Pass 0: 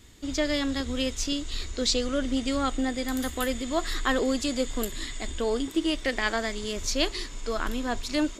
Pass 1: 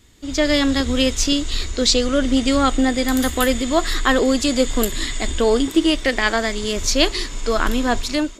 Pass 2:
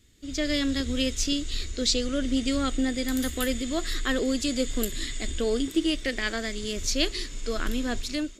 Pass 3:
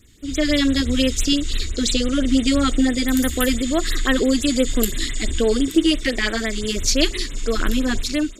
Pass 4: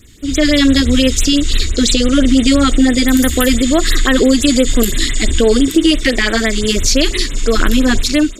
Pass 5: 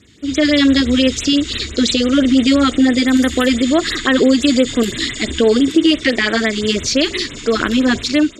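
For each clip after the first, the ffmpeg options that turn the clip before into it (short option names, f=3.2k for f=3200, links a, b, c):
-af "dynaudnorm=f=100:g=7:m=11dB"
-af "equalizer=f=910:t=o:w=0.92:g=-12.5,volume=-7.5dB"
-af "afftfilt=real='re*(1-between(b*sr/1024,500*pow(6000/500,0.5+0.5*sin(2*PI*5.9*pts/sr))/1.41,500*pow(6000/500,0.5+0.5*sin(2*PI*5.9*pts/sr))*1.41))':imag='im*(1-between(b*sr/1024,500*pow(6000/500,0.5+0.5*sin(2*PI*5.9*pts/sr))/1.41,500*pow(6000/500,0.5+0.5*sin(2*PI*5.9*pts/sr))*1.41))':win_size=1024:overlap=0.75,volume=8.5dB"
-af "alimiter=level_in=10dB:limit=-1dB:release=50:level=0:latency=1,volume=-1dB"
-af "highpass=110,lowpass=5.3k,volume=-1dB"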